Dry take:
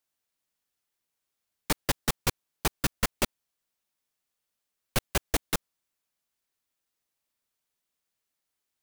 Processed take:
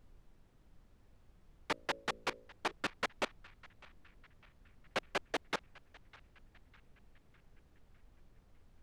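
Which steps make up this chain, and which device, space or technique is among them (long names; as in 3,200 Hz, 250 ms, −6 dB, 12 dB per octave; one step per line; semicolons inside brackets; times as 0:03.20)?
aircraft cabin announcement (band-pass filter 390–3,000 Hz; soft clipping −25.5 dBFS, distortion −13 dB; brown noise bed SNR 15 dB)
0:01.72–0:02.72: hum removal 55.63 Hz, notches 11
feedback echo with a band-pass in the loop 604 ms, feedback 56%, band-pass 2,000 Hz, level −20 dB
level −1 dB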